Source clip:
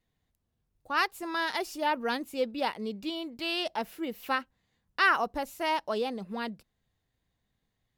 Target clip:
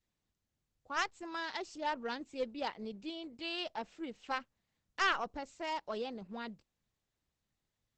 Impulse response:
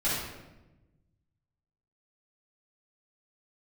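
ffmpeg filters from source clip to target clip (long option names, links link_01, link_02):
-af "aeval=exprs='0.224*(cos(1*acos(clip(val(0)/0.224,-1,1)))-cos(1*PI/2))+0.0891*(cos(2*acos(clip(val(0)/0.224,-1,1)))-cos(2*PI/2))+0.00398*(cos(7*acos(clip(val(0)/0.224,-1,1)))-cos(7*PI/2))+0.00891*(cos(8*acos(clip(val(0)/0.224,-1,1)))-cos(8*PI/2))':channel_layout=same,adynamicequalizer=threshold=0.0141:dfrequency=790:dqfactor=1.6:tfrequency=790:tqfactor=1.6:attack=5:release=100:ratio=0.375:range=2:mode=cutabove:tftype=bell,volume=-6.5dB" -ar 48000 -c:a libopus -b:a 12k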